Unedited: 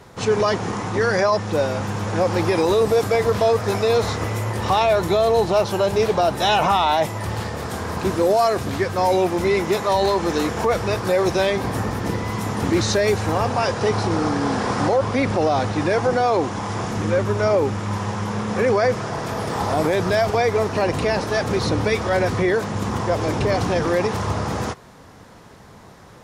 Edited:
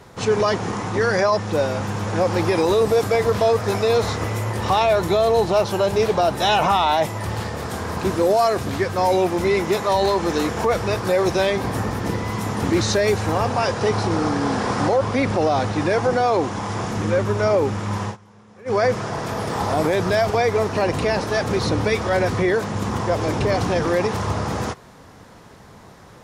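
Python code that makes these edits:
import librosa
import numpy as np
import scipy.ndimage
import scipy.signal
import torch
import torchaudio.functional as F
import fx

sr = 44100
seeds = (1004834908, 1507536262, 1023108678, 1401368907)

y = fx.edit(x, sr, fx.fade_down_up(start_s=18.02, length_s=0.78, db=-24.0, fade_s=0.15, curve='qsin'), tone=tone)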